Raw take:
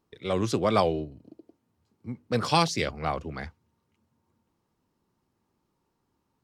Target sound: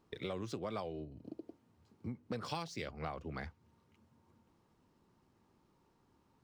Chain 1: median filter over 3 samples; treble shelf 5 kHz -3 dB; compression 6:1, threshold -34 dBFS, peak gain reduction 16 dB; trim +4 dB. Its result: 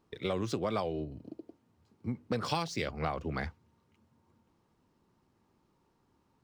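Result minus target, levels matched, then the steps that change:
compression: peak gain reduction -8 dB
change: compression 6:1, threshold -43.5 dBFS, peak gain reduction 24 dB

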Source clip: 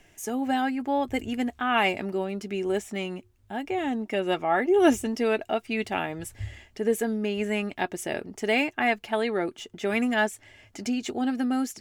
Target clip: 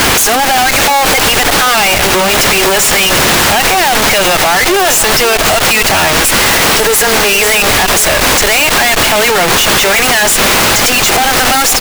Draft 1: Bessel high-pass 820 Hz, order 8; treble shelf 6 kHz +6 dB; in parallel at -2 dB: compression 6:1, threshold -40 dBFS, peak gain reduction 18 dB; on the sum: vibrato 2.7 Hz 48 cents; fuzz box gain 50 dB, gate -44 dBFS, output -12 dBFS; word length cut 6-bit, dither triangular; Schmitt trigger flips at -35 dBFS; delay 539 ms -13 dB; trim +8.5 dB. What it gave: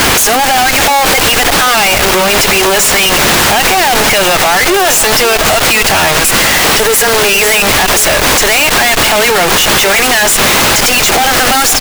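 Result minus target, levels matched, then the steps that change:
compression: peak gain reduction -9.5 dB
change: compression 6:1, threshold -51.5 dBFS, peak gain reduction 27.5 dB

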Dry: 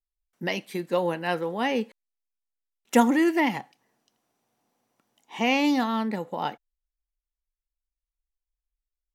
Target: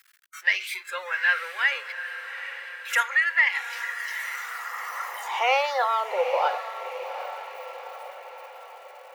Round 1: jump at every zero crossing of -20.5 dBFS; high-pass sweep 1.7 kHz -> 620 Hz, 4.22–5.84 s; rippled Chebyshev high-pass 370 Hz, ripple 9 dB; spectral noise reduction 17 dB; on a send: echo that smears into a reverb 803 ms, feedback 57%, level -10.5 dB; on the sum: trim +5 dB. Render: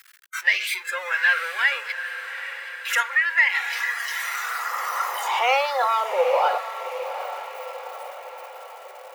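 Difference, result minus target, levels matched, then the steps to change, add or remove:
jump at every zero crossing: distortion +6 dB
change: jump at every zero crossing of -28.5 dBFS

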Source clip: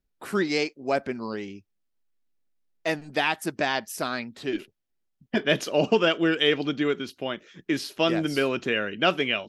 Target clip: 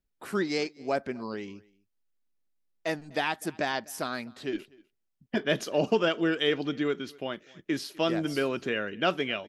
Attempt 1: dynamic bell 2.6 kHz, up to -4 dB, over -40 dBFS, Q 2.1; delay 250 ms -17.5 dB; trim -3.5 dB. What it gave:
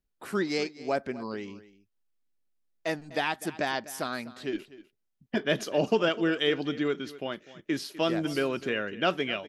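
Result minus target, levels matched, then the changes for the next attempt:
echo-to-direct +7.5 dB
change: delay 250 ms -25 dB

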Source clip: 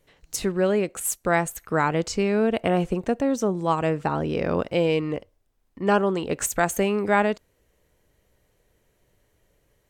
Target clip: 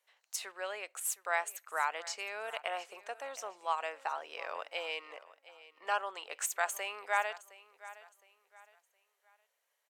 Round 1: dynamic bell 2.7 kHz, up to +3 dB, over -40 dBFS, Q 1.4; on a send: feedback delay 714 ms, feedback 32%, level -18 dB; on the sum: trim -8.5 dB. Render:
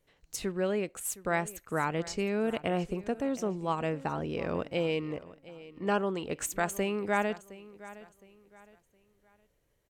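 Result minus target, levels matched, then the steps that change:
1 kHz band -3.5 dB
add after dynamic bell: high-pass 710 Hz 24 dB/octave

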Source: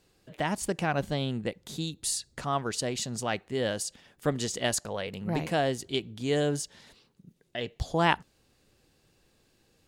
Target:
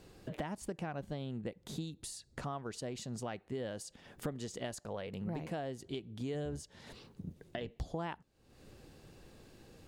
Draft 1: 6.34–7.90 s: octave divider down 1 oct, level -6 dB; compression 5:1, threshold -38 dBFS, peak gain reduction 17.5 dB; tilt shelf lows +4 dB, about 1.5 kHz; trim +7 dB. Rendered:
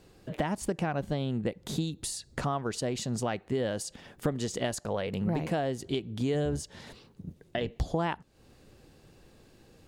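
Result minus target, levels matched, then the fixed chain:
compression: peak gain reduction -9.5 dB
6.34–7.90 s: octave divider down 1 oct, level -6 dB; compression 5:1, threshold -50 dBFS, peak gain reduction 27.5 dB; tilt shelf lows +4 dB, about 1.5 kHz; trim +7 dB

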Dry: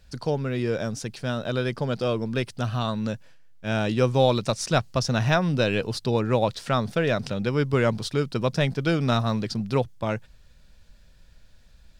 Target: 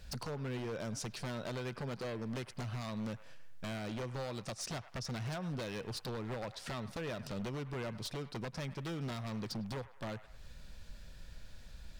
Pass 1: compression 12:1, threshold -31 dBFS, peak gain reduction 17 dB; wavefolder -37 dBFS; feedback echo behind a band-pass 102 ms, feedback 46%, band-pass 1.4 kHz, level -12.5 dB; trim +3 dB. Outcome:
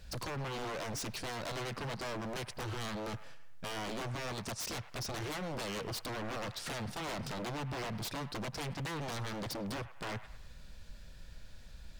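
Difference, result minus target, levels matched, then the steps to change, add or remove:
compression: peak gain reduction -6.5 dB
change: compression 12:1, threshold -38 dBFS, peak gain reduction 23 dB

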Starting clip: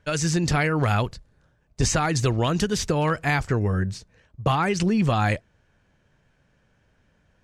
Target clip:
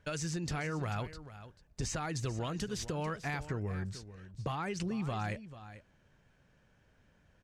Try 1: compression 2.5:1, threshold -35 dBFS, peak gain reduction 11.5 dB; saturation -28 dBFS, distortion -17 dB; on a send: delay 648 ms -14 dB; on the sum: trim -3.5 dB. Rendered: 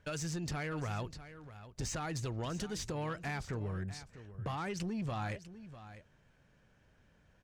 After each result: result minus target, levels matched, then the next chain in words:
echo 207 ms late; saturation: distortion +13 dB
compression 2.5:1, threshold -35 dBFS, peak gain reduction 11.5 dB; saturation -28 dBFS, distortion -17 dB; on a send: delay 441 ms -14 dB; on the sum: trim -3.5 dB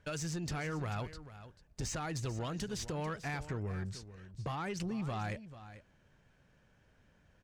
saturation: distortion +13 dB
compression 2.5:1, threshold -35 dBFS, peak gain reduction 11.5 dB; saturation -19.5 dBFS, distortion -30 dB; on a send: delay 441 ms -14 dB; on the sum: trim -3.5 dB

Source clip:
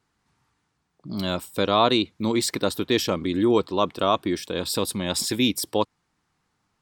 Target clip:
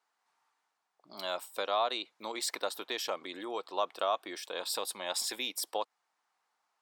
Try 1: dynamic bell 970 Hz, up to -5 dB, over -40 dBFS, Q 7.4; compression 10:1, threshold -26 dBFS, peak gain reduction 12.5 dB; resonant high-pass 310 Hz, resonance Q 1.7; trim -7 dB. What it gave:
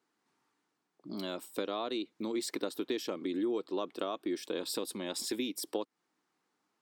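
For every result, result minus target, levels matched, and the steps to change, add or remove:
250 Hz band +13.5 dB; compression: peak gain reduction +6 dB
change: resonant high-pass 720 Hz, resonance Q 1.7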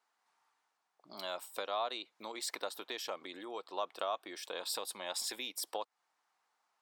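compression: peak gain reduction +6 dB
change: compression 10:1, threshold -19.5 dBFS, peak gain reduction 6.5 dB

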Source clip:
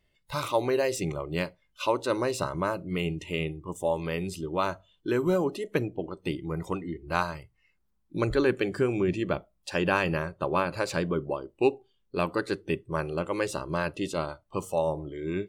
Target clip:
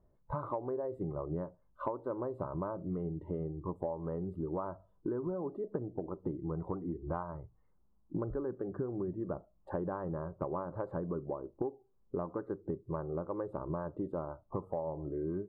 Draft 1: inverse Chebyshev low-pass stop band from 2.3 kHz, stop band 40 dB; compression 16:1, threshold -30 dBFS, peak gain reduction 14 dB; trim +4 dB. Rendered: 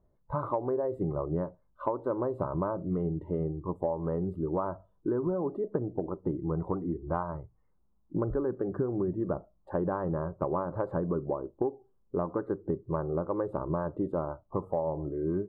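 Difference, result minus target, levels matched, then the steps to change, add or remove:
compression: peak gain reduction -6.5 dB
change: compression 16:1, threshold -37 dBFS, peak gain reduction 20.5 dB

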